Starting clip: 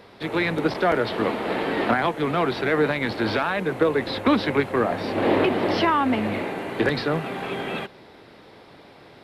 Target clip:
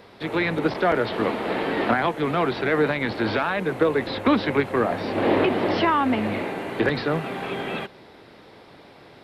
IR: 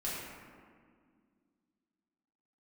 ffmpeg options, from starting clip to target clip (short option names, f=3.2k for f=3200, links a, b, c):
-filter_complex "[0:a]acrossover=split=4600[a][b];[b]acompressor=threshold=-49dB:ratio=4:attack=1:release=60[c];[a][c]amix=inputs=2:normalize=0"